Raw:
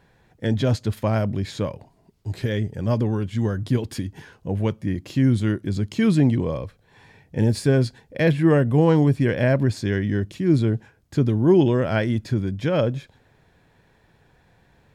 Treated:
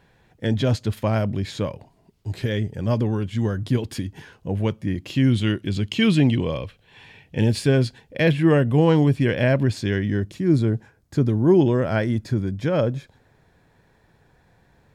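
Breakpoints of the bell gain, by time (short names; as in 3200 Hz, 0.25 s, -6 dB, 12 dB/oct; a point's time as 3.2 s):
bell 2900 Hz 0.74 oct
4.89 s +3 dB
5.37 s +13.5 dB
7.38 s +13.5 dB
7.86 s +6 dB
9.84 s +6 dB
10.39 s -4 dB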